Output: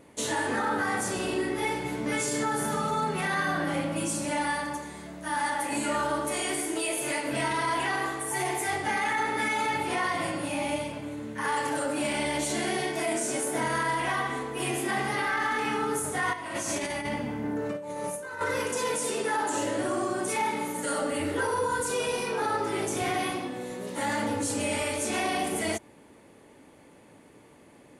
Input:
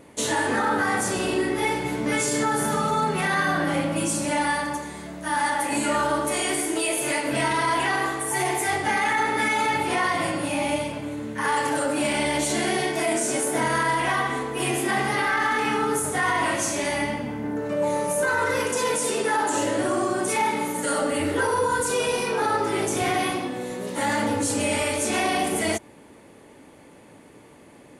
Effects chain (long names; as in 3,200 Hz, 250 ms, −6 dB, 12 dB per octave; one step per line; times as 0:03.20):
0:16.33–0:18.41: compressor whose output falls as the input rises −27 dBFS, ratio −0.5
level −5 dB